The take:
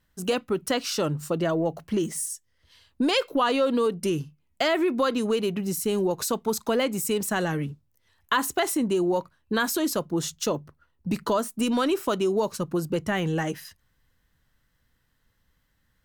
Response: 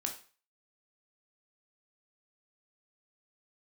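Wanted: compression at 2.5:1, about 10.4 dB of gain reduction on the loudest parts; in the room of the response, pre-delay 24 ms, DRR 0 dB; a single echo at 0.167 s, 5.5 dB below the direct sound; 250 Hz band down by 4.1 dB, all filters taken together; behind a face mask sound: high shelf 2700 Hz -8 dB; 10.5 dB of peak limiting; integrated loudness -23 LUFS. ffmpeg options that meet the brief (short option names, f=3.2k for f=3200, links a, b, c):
-filter_complex "[0:a]equalizer=f=250:t=o:g=-5.5,acompressor=threshold=-36dB:ratio=2.5,alimiter=level_in=3dB:limit=-24dB:level=0:latency=1,volume=-3dB,aecho=1:1:167:0.531,asplit=2[a][b];[1:a]atrim=start_sample=2205,adelay=24[c];[b][c]afir=irnorm=-1:irlink=0,volume=-1dB[d];[a][d]amix=inputs=2:normalize=0,highshelf=f=2.7k:g=-8,volume=11.5dB"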